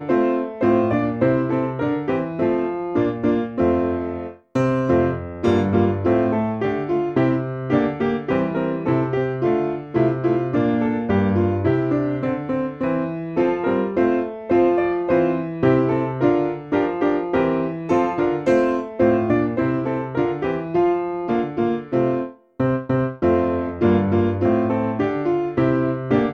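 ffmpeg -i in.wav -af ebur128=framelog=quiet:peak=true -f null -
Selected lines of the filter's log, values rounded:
Integrated loudness:
  I:         -20.6 LUFS
  Threshold: -30.6 LUFS
Loudness range:
  LRA:         1.8 LU
  Threshold: -40.7 LUFS
  LRA low:   -21.5 LUFS
  LRA high:  -19.8 LUFS
True peak:
  Peak:       -4.4 dBFS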